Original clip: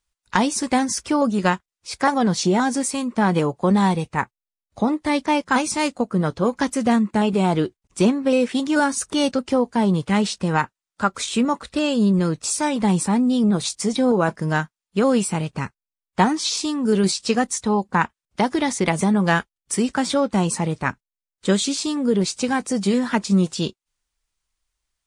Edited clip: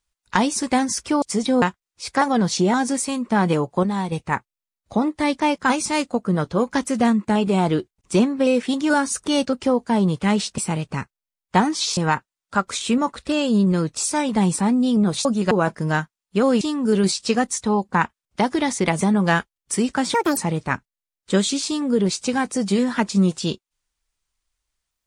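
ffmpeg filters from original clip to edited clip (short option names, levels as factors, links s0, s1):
-filter_complex "[0:a]asplit=12[s0][s1][s2][s3][s4][s5][s6][s7][s8][s9][s10][s11];[s0]atrim=end=1.222[s12];[s1]atrim=start=13.718:end=14.122[s13];[s2]atrim=start=1.478:end=3.692[s14];[s3]atrim=start=3.688:end=3.982,asetpts=PTS-STARTPTS,volume=0.473[s15];[s4]atrim=start=3.978:end=10.442[s16];[s5]atrim=start=15.218:end=16.612[s17];[s6]atrim=start=10.438:end=13.722[s18];[s7]atrim=start=1.218:end=1.482[s19];[s8]atrim=start=14.118:end=15.222[s20];[s9]atrim=start=16.608:end=20.144[s21];[s10]atrim=start=20.14:end=20.52,asetpts=PTS-STARTPTS,asetrate=73206,aresample=44100,atrim=end_sample=10095,asetpts=PTS-STARTPTS[s22];[s11]atrim=start=20.516[s23];[s12][s13]acrossfade=d=0.004:c1=hsin:c2=hsin[s24];[s24][s14]acrossfade=d=0.004:c1=hsin:c2=hsin[s25];[s25][s15]acrossfade=d=0.004:c1=hsin:c2=hsin[s26];[s26][s16]acrossfade=d=0.004:c1=hsin:c2=hsin[s27];[s27][s17]acrossfade=d=0.004:c1=hsin:c2=hsin[s28];[s28][s18]acrossfade=d=0.004:c1=hsin:c2=hsin[s29];[s29][s19]acrossfade=d=0.004:c1=hsin:c2=hsin[s30];[s30][s20]acrossfade=d=0.004:c1=hsin:c2=hsin[s31];[s31][s21]acrossfade=d=0.004:c1=hsin:c2=hsin[s32];[s32][s22]acrossfade=d=0.004:c1=hsin:c2=hsin[s33];[s33][s23]acrossfade=d=0.004:c1=hsin:c2=hsin"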